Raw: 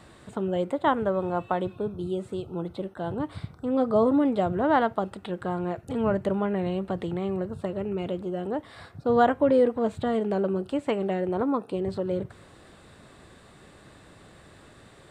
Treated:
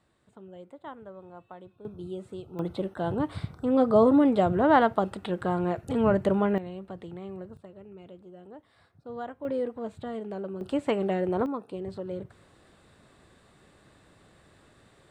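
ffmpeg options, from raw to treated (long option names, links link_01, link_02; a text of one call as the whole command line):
ffmpeg -i in.wav -af "asetnsamples=nb_out_samples=441:pad=0,asendcmd='1.85 volume volume -7dB;2.59 volume volume 2dB;6.58 volume volume -10.5dB;7.57 volume volume -17dB;9.45 volume volume -9.5dB;10.61 volume volume 0dB;11.46 volume volume -7dB',volume=-19dB" out.wav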